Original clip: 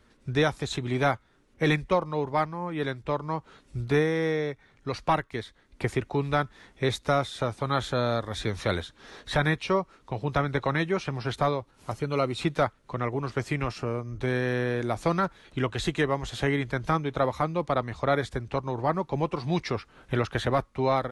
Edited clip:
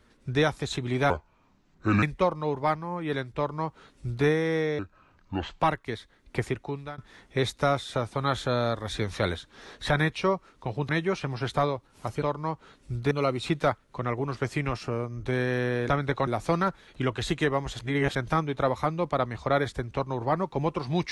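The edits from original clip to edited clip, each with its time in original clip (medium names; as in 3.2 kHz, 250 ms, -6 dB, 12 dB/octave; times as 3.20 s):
1.10–1.73 s: speed 68%
3.07–3.96 s: copy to 12.06 s
4.49–5.06 s: speed 70%
5.83–6.44 s: fade out, to -21 dB
10.35–10.73 s: move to 14.84 s
16.36–16.72 s: reverse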